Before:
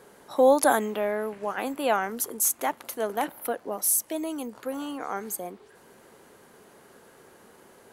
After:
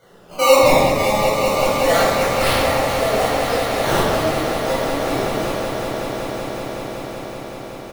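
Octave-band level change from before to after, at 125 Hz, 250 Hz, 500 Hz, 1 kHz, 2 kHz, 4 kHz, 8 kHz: no reading, +8.5 dB, +10.5 dB, +10.0 dB, +12.5 dB, +18.5 dB, +1.0 dB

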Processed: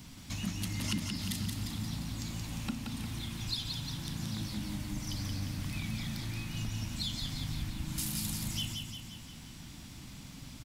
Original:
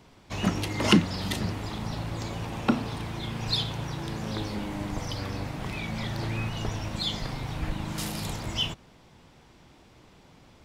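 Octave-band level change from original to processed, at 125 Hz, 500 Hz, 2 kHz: -5.0 dB, -18.5 dB, -9.5 dB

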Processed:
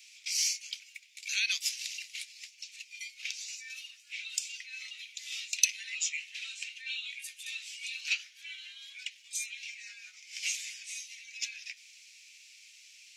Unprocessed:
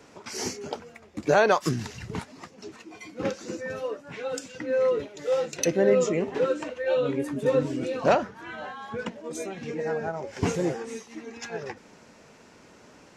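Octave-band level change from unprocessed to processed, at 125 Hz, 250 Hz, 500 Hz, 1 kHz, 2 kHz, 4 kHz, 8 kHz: under -40 dB, under -40 dB, under -40 dB, under -35 dB, -3.0 dB, +6.0 dB, +5.0 dB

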